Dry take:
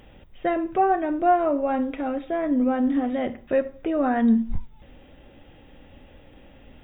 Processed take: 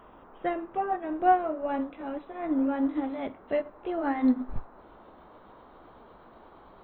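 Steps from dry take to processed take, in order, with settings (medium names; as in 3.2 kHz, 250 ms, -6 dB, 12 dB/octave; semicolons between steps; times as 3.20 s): pitch bend over the whole clip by +3 st starting unshifted; band noise 180–1200 Hz -42 dBFS; upward expansion 1.5:1, over -34 dBFS; trim -1.5 dB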